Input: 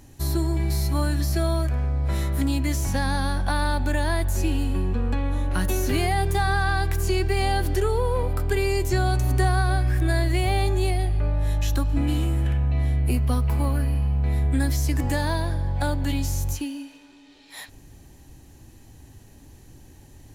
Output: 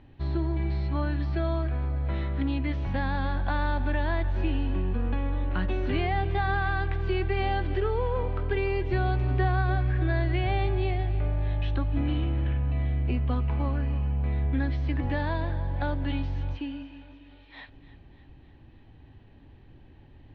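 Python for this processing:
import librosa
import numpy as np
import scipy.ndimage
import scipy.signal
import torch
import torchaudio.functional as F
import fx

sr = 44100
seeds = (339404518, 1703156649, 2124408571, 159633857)

y = scipy.signal.sosfilt(scipy.signal.butter(6, 3500.0, 'lowpass', fs=sr, output='sos'), x)
y = fx.echo_feedback(y, sr, ms=299, feedback_pct=60, wet_db=-16.5)
y = y * 10.0 ** (-4.0 / 20.0)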